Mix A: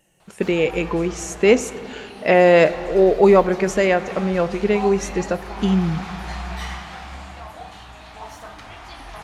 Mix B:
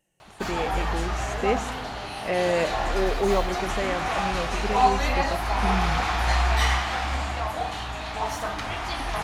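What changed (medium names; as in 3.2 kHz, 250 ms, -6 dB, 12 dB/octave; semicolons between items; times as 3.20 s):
speech -11.5 dB; background +8.5 dB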